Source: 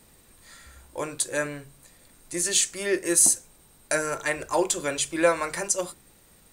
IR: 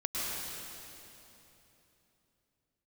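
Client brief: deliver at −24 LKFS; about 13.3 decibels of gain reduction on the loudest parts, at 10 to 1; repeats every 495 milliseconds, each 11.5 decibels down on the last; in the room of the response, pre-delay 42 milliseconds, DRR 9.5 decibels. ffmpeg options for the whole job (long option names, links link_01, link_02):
-filter_complex "[0:a]acompressor=threshold=-28dB:ratio=10,aecho=1:1:495|990|1485:0.266|0.0718|0.0194,asplit=2[link_01][link_02];[1:a]atrim=start_sample=2205,adelay=42[link_03];[link_02][link_03]afir=irnorm=-1:irlink=0,volume=-16dB[link_04];[link_01][link_04]amix=inputs=2:normalize=0,volume=8.5dB"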